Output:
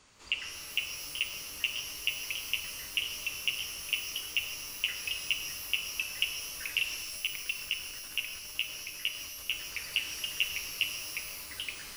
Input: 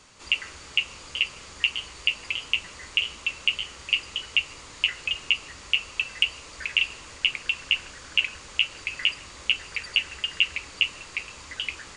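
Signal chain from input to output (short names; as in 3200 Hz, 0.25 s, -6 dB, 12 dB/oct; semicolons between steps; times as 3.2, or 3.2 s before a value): 7.02–9.52 level quantiser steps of 11 dB; shimmer reverb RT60 1.9 s, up +12 st, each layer -2 dB, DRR 6 dB; gain -8 dB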